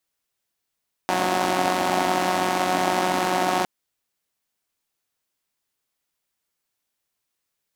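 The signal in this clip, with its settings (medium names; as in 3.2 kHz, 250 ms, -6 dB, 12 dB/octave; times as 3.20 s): four-cylinder engine model, steady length 2.56 s, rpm 5500, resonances 310/690 Hz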